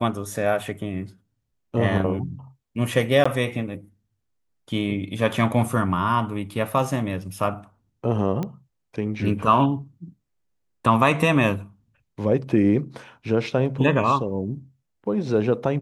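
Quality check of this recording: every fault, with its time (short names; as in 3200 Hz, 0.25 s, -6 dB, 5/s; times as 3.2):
3.24–3.25 gap 15 ms
8.43 pop -16 dBFS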